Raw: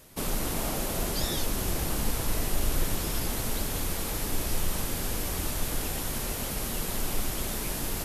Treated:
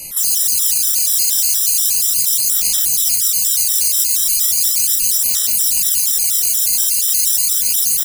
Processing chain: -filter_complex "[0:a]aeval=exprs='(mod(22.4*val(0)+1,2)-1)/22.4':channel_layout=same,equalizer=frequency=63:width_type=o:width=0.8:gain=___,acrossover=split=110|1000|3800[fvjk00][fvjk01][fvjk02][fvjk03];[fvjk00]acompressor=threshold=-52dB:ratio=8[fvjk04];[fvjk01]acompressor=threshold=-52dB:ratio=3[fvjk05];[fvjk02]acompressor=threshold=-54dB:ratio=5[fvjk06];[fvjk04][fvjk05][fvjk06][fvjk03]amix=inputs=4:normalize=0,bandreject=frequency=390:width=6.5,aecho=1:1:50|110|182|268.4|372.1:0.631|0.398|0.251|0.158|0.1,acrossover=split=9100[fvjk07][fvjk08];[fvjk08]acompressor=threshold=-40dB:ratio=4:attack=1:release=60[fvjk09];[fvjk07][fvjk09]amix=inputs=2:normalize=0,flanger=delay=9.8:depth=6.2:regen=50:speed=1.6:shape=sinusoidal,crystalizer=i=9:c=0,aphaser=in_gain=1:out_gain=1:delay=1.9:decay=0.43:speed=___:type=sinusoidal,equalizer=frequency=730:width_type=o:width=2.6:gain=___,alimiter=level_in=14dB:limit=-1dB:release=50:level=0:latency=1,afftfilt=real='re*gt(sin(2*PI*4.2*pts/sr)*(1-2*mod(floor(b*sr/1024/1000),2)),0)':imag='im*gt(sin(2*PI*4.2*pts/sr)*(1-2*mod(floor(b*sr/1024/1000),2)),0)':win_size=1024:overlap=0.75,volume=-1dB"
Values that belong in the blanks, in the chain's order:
-7, 0.37, -8